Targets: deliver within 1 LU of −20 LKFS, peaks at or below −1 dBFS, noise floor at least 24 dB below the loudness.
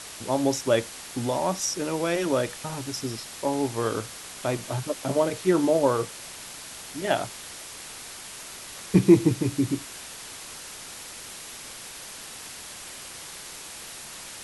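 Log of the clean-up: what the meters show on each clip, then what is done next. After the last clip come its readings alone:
background noise floor −41 dBFS; target noise floor −52 dBFS; integrated loudness −28.0 LKFS; sample peak −4.5 dBFS; target loudness −20.0 LKFS
→ broadband denoise 11 dB, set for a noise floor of −41 dBFS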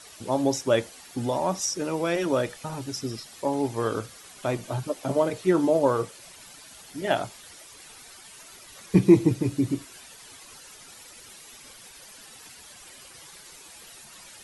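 background noise floor −48 dBFS; target noise floor −50 dBFS
→ broadband denoise 6 dB, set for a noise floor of −48 dBFS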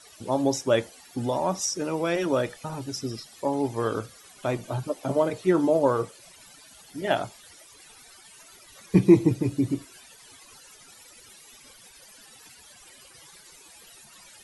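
background noise floor −52 dBFS; integrated loudness −26.0 LKFS; sample peak −4.5 dBFS; target loudness −20.0 LKFS
→ level +6 dB
brickwall limiter −1 dBFS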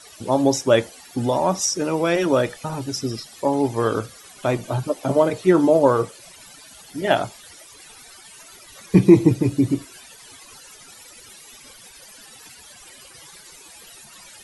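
integrated loudness −20.5 LKFS; sample peak −1.0 dBFS; background noise floor −46 dBFS

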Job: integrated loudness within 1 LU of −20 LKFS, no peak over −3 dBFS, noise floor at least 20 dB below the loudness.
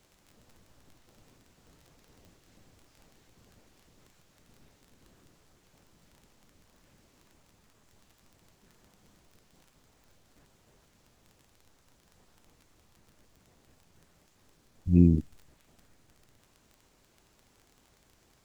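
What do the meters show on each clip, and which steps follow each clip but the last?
crackle rate 18 per second; integrated loudness −24.5 LKFS; sample peak −8.0 dBFS; target loudness −20.0 LKFS
→ click removal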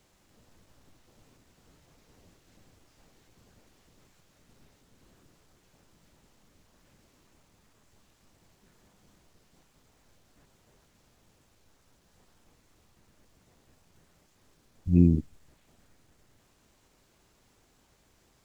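crackle rate 0.16 per second; integrated loudness −24.5 LKFS; sample peak −8.0 dBFS; target loudness −20.0 LKFS
→ level +4.5 dB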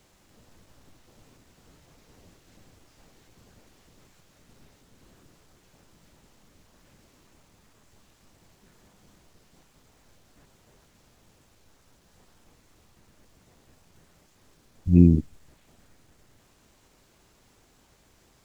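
integrated loudness −20.0 LKFS; sample peak −3.5 dBFS; background noise floor −62 dBFS

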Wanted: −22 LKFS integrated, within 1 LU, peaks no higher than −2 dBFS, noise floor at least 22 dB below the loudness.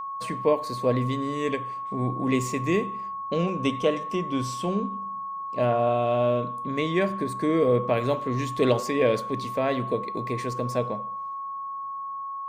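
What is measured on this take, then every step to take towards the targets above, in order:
interfering tone 1,100 Hz; level of the tone −31 dBFS; integrated loudness −26.5 LKFS; sample peak −8.0 dBFS; target loudness −22.0 LKFS
→ notch filter 1,100 Hz, Q 30
level +4.5 dB

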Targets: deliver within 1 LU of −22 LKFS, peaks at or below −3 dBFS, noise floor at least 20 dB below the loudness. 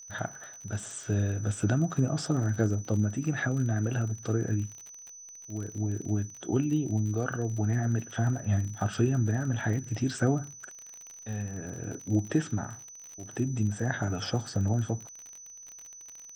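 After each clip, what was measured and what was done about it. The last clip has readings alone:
crackle rate 43 per second; interfering tone 6,000 Hz; level of the tone −45 dBFS; integrated loudness −30.5 LKFS; sample peak −13.0 dBFS; target loudness −22.0 LKFS
→ click removal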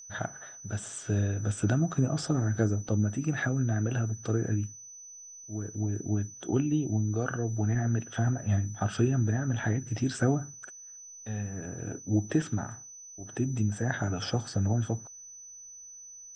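crackle rate 0 per second; interfering tone 6,000 Hz; level of the tone −45 dBFS
→ notch filter 6,000 Hz, Q 30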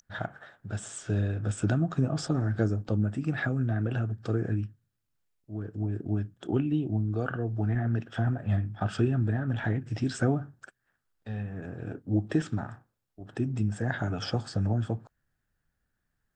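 interfering tone none found; integrated loudness −30.5 LKFS; sample peak −13.0 dBFS; target loudness −22.0 LKFS
→ level +8.5 dB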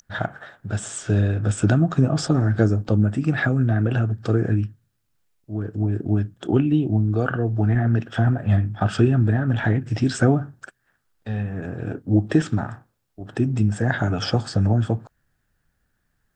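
integrated loudness −22.0 LKFS; sample peak −4.5 dBFS; background noise floor −72 dBFS

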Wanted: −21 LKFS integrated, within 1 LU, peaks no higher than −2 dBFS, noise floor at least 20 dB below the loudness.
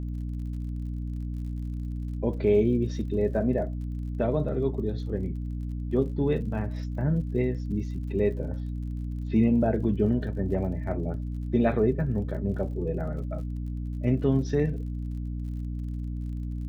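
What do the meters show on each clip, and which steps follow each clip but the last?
crackle rate 45 per second; mains hum 60 Hz; hum harmonics up to 300 Hz; level of the hum −30 dBFS; integrated loudness −28.5 LKFS; sample peak −11.5 dBFS; target loudness −21.0 LKFS
→ click removal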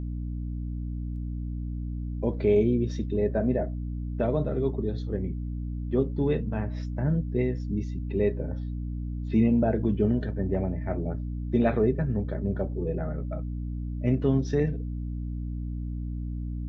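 crackle rate 0.060 per second; mains hum 60 Hz; hum harmonics up to 300 Hz; level of the hum −30 dBFS
→ mains-hum notches 60/120/180/240/300 Hz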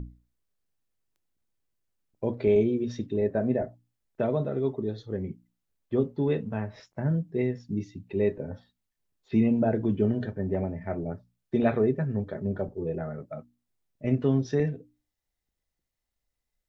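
mains hum none found; integrated loudness −28.5 LKFS; sample peak −11.5 dBFS; target loudness −21.0 LKFS
→ level +7.5 dB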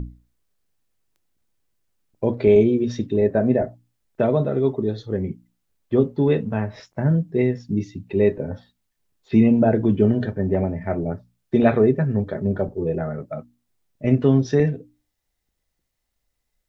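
integrated loudness −21.0 LKFS; sample peak −4.0 dBFS; background noise floor −77 dBFS

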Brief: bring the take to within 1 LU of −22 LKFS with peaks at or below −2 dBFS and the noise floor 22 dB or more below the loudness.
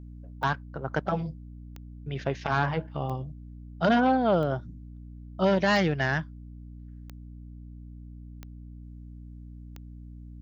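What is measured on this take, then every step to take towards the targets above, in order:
number of clicks 8; mains hum 60 Hz; hum harmonics up to 300 Hz; level of the hum −42 dBFS; integrated loudness −27.5 LKFS; sample peak −10.5 dBFS; target loudness −22.0 LKFS
→ click removal
mains-hum notches 60/120/180/240/300 Hz
level +5.5 dB

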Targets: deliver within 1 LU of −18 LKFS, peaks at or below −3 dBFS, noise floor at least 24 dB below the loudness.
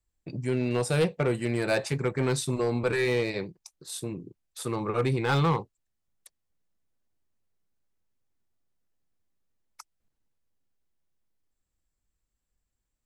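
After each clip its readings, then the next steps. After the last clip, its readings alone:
share of clipped samples 0.4%; peaks flattened at −18.5 dBFS; integrated loudness −28.0 LKFS; sample peak −18.5 dBFS; target loudness −18.0 LKFS
→ clipped peaks rebuilt −18.5 dBFS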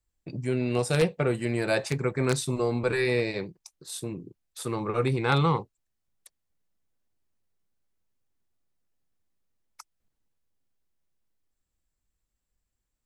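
share of clipped samples 0.0%; integrated loudness −27.5 LKFS; sample peak −9.5 dBFS; target loudness −18.0 LKFS
→ level +9.5 dB
brickwall limiter −3 dBFS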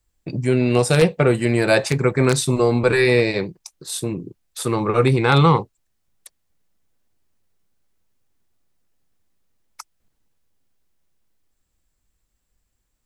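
integrated loudness −18.5 LKFS; sample peak −3.0 dBFS; background noise floor −72 dBFS

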